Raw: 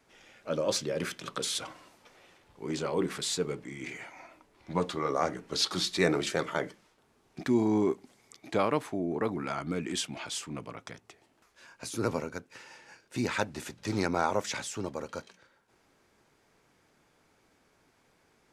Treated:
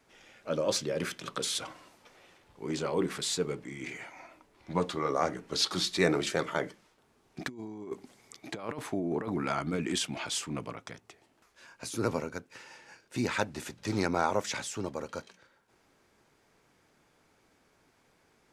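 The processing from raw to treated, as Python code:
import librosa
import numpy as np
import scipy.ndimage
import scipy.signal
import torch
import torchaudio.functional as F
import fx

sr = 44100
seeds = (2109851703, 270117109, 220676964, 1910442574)

y = fx.over_compress(x, sr, threshold_db=-32.0, ratio=-0.5, at=(7.41, 10.73), fade=0.02)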